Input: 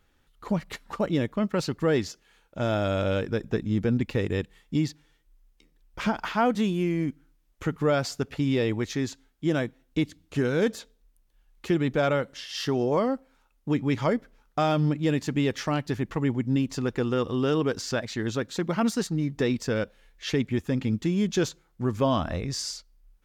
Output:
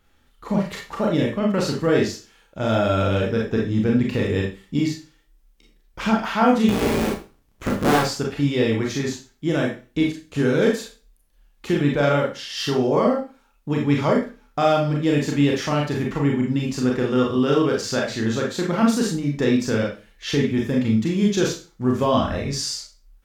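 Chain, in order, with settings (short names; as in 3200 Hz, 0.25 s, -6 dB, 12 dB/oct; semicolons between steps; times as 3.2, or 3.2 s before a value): 6.68–8 cycle switcher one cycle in 3, inverted; Schroeder reverb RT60 0.33 s, combs from 28 ms, DRR -1.5 dB; gain +2 dB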